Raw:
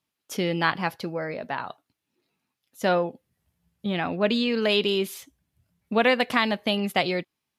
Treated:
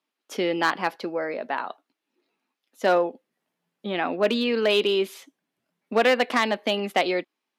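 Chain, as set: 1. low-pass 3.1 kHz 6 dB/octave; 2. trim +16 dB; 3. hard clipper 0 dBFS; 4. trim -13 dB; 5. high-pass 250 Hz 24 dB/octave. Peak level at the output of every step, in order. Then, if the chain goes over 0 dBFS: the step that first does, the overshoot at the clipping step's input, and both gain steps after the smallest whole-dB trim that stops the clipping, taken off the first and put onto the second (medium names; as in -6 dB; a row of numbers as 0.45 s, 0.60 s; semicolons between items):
-9.0 dBFS, +7.0 dBFS, 0.0 dBFS, -13.0 dBFS, -7.0 dBFS; step 2, 7.0 dB; step 2 +9 dB, step 4 -6 dB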